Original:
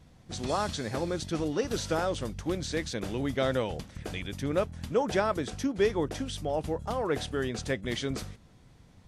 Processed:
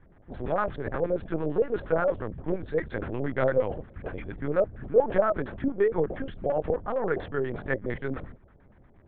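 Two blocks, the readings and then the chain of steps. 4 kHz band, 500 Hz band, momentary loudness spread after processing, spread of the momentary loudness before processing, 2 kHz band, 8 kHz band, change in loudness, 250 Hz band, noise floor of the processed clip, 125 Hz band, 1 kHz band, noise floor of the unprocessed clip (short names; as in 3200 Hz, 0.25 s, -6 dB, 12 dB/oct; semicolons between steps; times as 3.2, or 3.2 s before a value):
under -15 dB, +4.5 dB, 10 LU, 8 LU, +1.5 dB, under -40 dB, +2.5 dB, -0.5 dB, -57 dBFS, -0.5 dB, +1.0 dB, -57 dBFS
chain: LFO low-pass square 8.6 Hz 570–1600 Hz; LPC vocoder at 8 kHz pitch kept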